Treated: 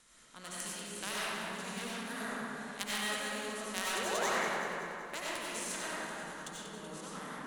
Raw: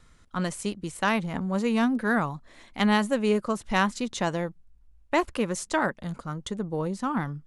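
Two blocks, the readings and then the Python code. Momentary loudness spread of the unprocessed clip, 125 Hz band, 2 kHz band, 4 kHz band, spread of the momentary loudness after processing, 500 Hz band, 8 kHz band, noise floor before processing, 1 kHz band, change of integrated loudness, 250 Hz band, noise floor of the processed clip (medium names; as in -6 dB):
11 LU, -19.0 dB, -6.5 dB, -2.5 dB, 11 LU, -12.0 dB, 0.0 dB, -57 dBFS, -9.5 dB, -10.0 dB, -18.0 dB, -52 dBFS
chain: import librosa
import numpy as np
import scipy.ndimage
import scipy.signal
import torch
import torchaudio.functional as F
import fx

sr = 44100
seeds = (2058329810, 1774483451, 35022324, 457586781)

p1 = fx.bin_compress(x, sr, power=0.6)
p2 = librosa.effects.preemphasis(p1, coef=0.9, zi=[0.0])
p3 = fx.spec_paint(p2, sr, seeds[0], shape='rise', start_s=3.95, length_s=0.35, low_hz=340.0, high_hz=2400.0, level_db=-32.0)
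p4 = fx.cheby_harmonics(p3, sr, harmonics=(3, 7), levels_db=(-12, -41), full_scale_db=-14.5)
p5 = p4 + fx.echo_thinned(p4, sr, ms=189, feedback_pct=56, hz=420.0, wet_db=-9, dry=0)
p6 = fx.rev_freeverb(p5, sr, rt60_s=3.3, hf_ratio=0.35, predelay_ms=50, drr_db=-8.0)
y = p6 * 10.0 ** (2.5 / 20.0)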